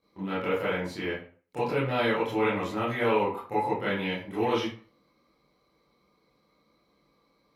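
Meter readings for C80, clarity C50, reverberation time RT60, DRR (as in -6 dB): 8.5 dB, 3.0 dB, 0.45 s, -11.0 dB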